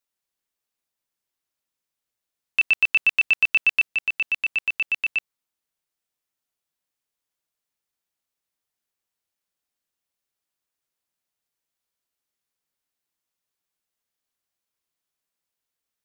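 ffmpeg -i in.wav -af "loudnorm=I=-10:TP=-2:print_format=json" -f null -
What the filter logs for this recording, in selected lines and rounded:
"input_i" : "-20.6",
"input_tp" : "-11.9",
"input_lra" : "6.6",
"input_thresh" : "-30.6",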